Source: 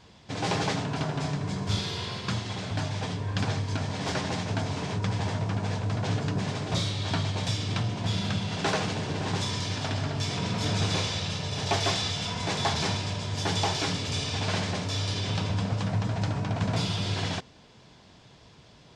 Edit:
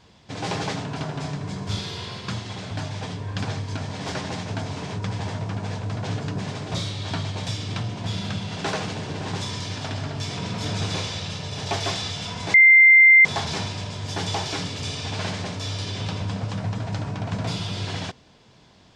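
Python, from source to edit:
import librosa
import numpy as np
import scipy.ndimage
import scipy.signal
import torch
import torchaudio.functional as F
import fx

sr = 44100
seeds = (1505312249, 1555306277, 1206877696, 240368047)

y = fx.edit(x, sr, fx.insert_tone(at_s=12.54, length_s=0.71, hz=2090.0, db=-8.5), tone=tone)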